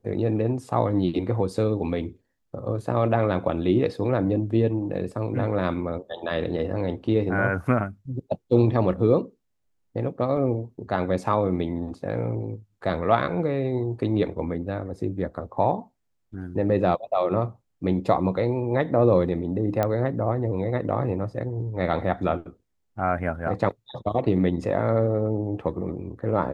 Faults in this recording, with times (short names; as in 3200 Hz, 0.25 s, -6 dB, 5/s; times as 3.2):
10.37 gap 2.2 ms
19.83 pop -11 dBFS